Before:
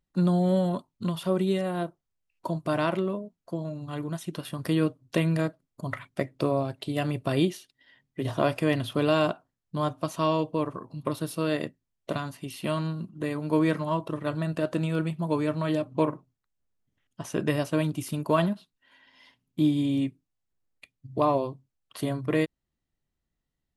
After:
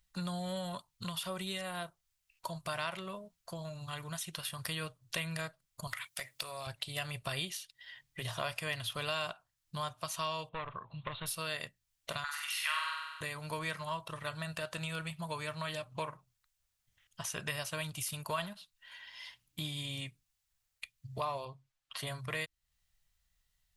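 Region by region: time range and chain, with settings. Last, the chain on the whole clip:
5.87–6.67 s: tilt EQ +3 dB/octave + compression 5:1, threshold -30 dBFS + hard clipper -24.5 dBFS
10.49–11.26 s: overload inside the chain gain 23.5 dB + steep low-pass 3.9 kHz 96 dB/octave
12.24–13.21 s: inverse Chebyshev high-pass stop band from 430 Hz + peaking EQ 1.7 kHz +14.5 dB 1.4 oct + flutter echo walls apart 8.1 m, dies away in 0.81 s
21.45–22.07 s: low-pass 2.5 kHz 6 dB/octave + bass shelf 140 Hz -9 dB + comb 7.4 ms, depth 67%
whole clip: amplifier tone stack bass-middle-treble 10-0-10; compression 2:1, threshold -55 dBFS; trim +12 dB

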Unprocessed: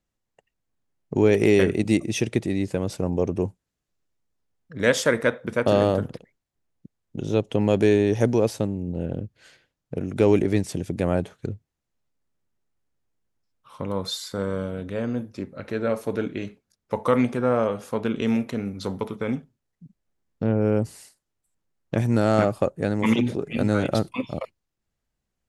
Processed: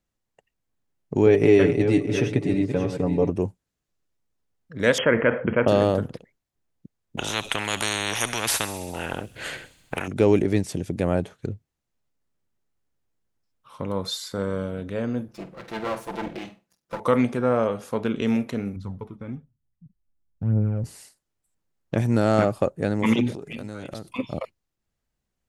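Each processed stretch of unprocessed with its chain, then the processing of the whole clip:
1.26–3.30 s: backward echo that repeats 319 ms, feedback 47%, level -8 dB + low-pass 2.2 kHz 6 dB/octave + comb 7 ms, depth 64%
4.98–5.68 s: brick-wall FIR low-pass 3.3 kHz + level flattener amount 50%
7.17–10.08 s: peaking EQ 5.3 kHz -11 dB 0.88 oct + feedback echo behind a high-pass 66 ms, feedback 74%, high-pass 4.2 kHz, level -14 dB + spectrum-flattening compressor 10:1
15.28–17.00 s: comb filter that takes the minimum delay 5.9 ms + high-pass 100 Hz 6 dB/octave + flutter echo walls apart 8.2 m, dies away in 0.24 s
18.76–20.84 s: FFT filter 140 Hz 0 dB, 430 Hz -14 dB, 1.1 kHz -12 dB, 4.2 kHz -20 dB + phaser 1.1 Hz, delay 3.8 ms, feedback 48%
23.32–24.19 s: compression 5:1, threshold -32 dBFS + treble shelf 3.7 kHz +7.5 dB + hard clipper -24.5 dBFS
whole clip: none

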